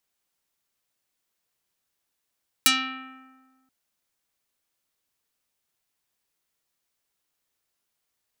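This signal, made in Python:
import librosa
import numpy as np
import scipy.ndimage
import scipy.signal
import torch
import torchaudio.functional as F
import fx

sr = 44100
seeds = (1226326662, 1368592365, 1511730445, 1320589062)

y = fx.pluck(sr, length_s=1.03, note=60, decay_s=1.55, pick=0.49, brightness='dark')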